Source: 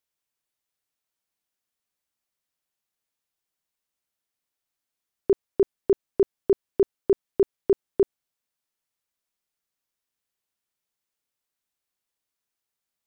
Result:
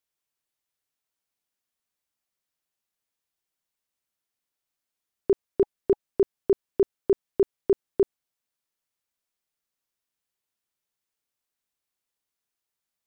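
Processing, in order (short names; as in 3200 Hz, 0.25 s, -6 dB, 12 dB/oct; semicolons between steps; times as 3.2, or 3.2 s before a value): 5.45–6.06 notch 830 Hz, Q 12; gain -1 dB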